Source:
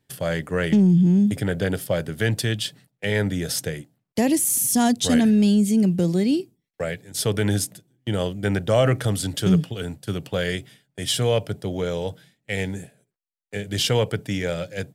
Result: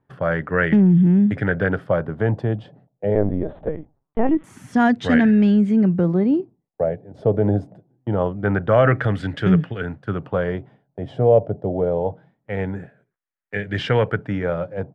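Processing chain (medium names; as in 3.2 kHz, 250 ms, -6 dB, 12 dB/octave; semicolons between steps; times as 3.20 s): LFO low-pass sine 0.24 Hz 660–1800 Hz; 3.15–4.44 s: LPC vocoder at 8 kHz pitch kept; trim +2 dB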